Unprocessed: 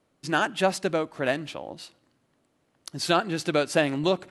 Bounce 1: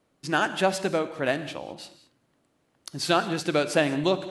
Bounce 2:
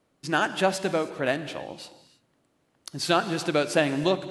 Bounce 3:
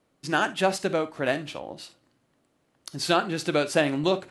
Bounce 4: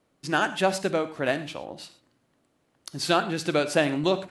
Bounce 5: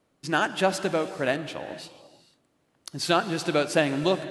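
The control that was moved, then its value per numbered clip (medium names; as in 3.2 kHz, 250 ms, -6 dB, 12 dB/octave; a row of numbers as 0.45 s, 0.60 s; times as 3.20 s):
gated-style reverb, gate: 230 ms, 340 ms, 90 ms, 140 ms, 510 ms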